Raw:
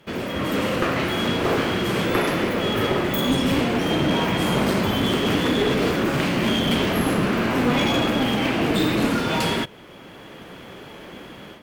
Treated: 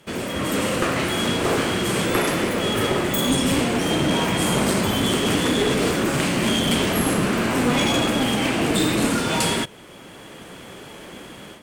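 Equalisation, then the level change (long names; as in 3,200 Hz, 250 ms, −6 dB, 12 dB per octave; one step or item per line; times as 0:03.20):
parametric band 8,600 Hz +13 dB 0.93 octaves
0.0 dB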